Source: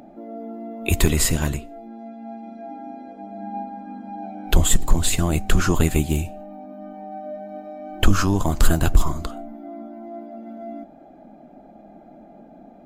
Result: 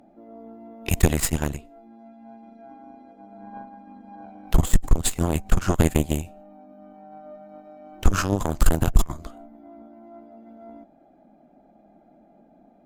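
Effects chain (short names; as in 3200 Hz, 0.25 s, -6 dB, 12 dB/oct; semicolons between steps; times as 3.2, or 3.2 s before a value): dynamic EQ 4000 Hz, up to -4 dB, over -41 dBFS, Q 1.7; added harmonics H 2 -28 dB, 4 -10 dB, 7 -23 dB, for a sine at -1.5 dBFS; gain -3.5 dB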